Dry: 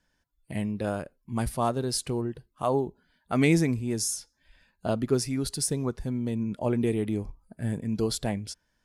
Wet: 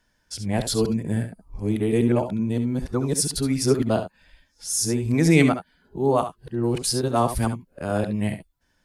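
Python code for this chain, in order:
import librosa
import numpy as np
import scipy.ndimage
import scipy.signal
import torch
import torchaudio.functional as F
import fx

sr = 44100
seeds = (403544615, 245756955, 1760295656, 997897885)

y = np.flip(x).copy()
y = fx.room_early_taps(y, sr, ms=(68, 79), db=(-10.0, -17.0))
y = F.gain(torch.from_numpy(y), 5.0).numpy()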